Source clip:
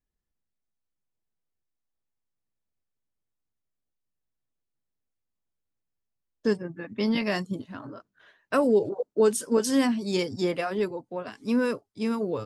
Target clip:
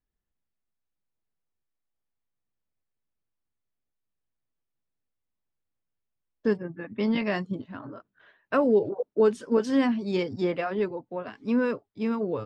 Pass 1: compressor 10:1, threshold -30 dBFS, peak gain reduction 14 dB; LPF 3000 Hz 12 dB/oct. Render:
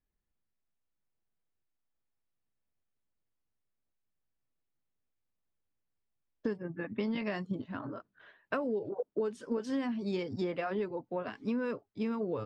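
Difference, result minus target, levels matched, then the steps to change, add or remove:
compressor: peak gain reduction +14 dB
remove: compressor 10:1, threshold -30 dBFS, peak gain reduction 14 dB

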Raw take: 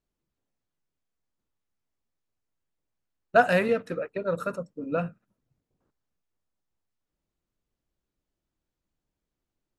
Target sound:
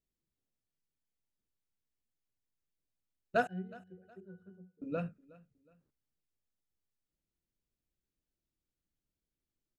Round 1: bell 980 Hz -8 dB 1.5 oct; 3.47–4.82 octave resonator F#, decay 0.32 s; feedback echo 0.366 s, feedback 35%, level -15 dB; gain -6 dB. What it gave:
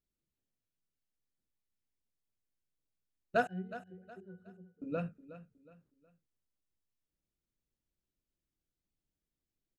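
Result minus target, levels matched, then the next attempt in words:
echo-to-direct +7.5 dB
bell 980 Hz -8 dB 1.5 oct; 3.47–4.82 octave resonator F#, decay 0.32 s; feedback echo 0.366 s, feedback 35%, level -22.5 dB; gain -6 dB

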